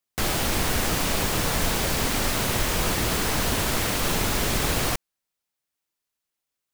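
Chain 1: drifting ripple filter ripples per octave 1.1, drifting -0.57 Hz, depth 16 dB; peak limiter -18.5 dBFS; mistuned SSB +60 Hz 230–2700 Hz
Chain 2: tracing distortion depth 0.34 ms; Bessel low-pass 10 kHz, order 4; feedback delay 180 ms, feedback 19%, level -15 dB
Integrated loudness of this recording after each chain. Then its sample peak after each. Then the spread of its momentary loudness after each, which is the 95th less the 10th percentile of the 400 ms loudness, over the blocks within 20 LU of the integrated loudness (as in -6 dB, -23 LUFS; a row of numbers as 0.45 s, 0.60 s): -32.0 LUFS, -26.5 LUFS; -19.0 dBFS, -11.5 dBFS; 2 LU, 1 LU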